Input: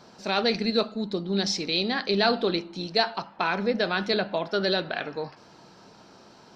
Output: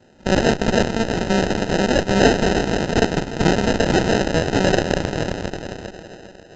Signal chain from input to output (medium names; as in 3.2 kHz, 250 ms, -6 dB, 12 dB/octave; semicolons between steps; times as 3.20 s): dynamic bell 1.7 kHz, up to +8 dB, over -42 dBFS, Q 0.96; echo with a slow build-up 81 ms, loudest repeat 5, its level -14 dB; sample-and-hold 39×; Chebyshev shaper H 7 -24 dB, 8 -13 dB, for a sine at -9 dBFS; trim +4 dB; A-law 128 kbps 16 kHz